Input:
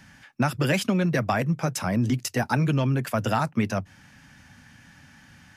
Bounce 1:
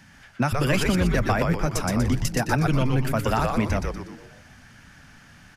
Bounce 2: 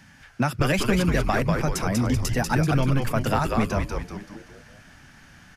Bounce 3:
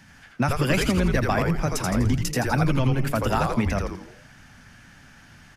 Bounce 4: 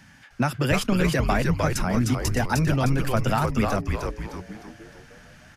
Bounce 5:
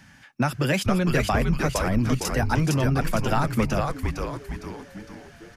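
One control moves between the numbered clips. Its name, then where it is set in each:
echo with shifted repeats, delay time: 121, 192, 83, 306, 458 milliseconds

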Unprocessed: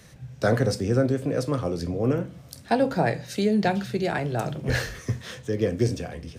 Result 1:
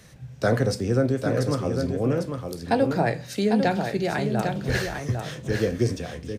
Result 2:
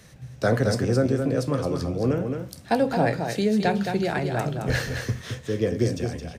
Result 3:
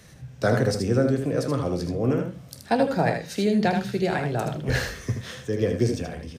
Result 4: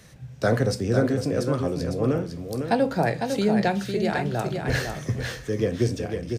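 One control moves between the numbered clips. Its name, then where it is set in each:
single-tap delay, delay time: 800, 218, 78, 503 milliseconds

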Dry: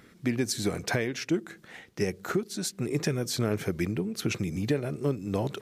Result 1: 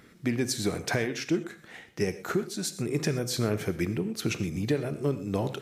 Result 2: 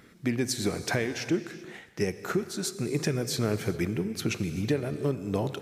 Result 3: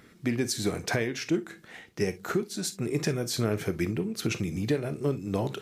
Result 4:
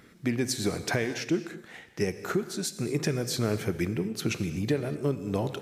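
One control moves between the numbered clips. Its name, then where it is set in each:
reverb whose tail is shaped and stops, gate: 150, 420, 80, 270 milliseconds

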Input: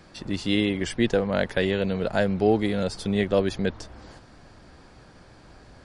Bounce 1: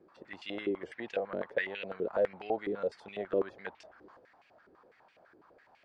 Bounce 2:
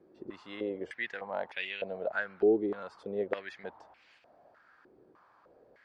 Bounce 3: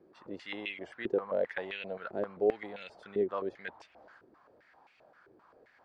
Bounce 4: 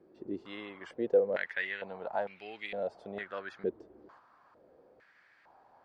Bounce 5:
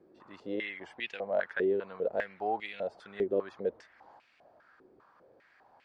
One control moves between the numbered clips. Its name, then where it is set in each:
band-pass on a step sequencer, speed: 12, 3.3, 7.6, 2.2, 5 Hertz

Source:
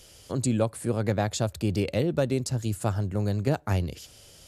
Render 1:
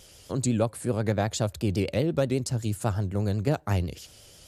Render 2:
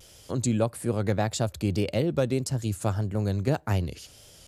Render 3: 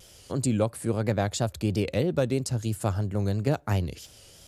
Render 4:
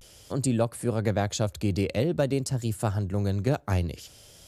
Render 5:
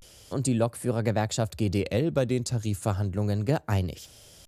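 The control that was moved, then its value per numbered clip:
pitch vibrato, speed: 8.1, 1.7, 3, 0.5, 0.31 Hertz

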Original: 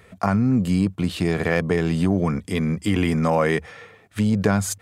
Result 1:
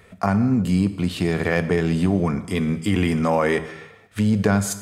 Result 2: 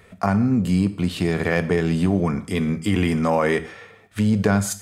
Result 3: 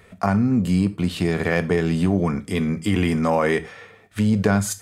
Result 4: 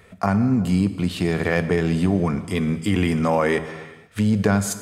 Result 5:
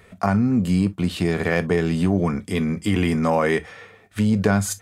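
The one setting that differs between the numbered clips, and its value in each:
reverb whose tail is shaped and stops, gate: 340, 210, 130, 520, 80 milliseconds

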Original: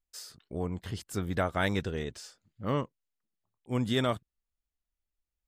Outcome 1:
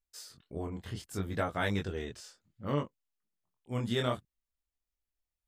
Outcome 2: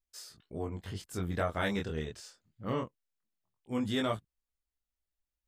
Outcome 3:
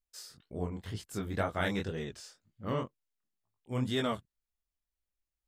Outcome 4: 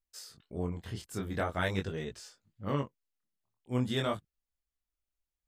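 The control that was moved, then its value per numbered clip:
chorus effect, speed: 0.65, 0.22, 2, 0.44 Hertz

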